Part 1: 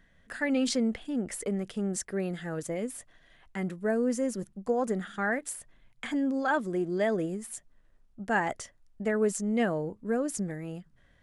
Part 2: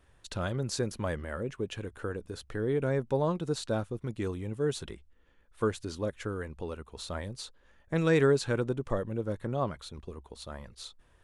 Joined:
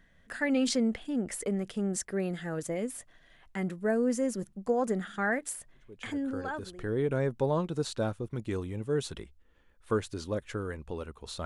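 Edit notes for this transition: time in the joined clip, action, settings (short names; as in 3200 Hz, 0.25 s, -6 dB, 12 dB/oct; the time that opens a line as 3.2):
part 1
6.32 switch to part 2 from 2.03 s, crossfade 1.16 s linear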